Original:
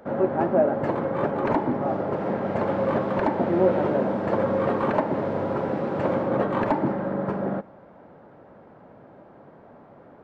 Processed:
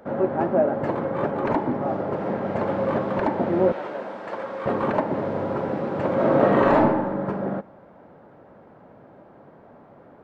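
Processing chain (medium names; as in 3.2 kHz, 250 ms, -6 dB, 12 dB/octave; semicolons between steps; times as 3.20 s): 3.72–4.66 s: high-pass 1.3 kHz 6 dB/octave; 6.14–6.80 s: reverb throw, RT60 1 s, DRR -6 dB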